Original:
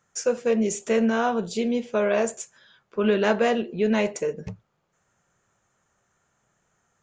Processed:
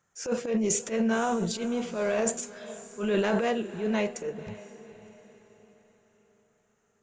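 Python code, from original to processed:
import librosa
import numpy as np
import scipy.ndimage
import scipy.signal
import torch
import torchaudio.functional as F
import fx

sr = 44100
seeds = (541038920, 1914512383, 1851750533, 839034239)

y = fx.transient(x, sr, attack_db=-10, sustain_db=fx.steps((0.0, 10.0), (3.39, 0.0)))
y = fx.echo_diffused(y, sr, ms=527, feedback_pct=42, wet_db=-15.5)
y = F.gain(torch.from_numpy(y), -4.5).numpy()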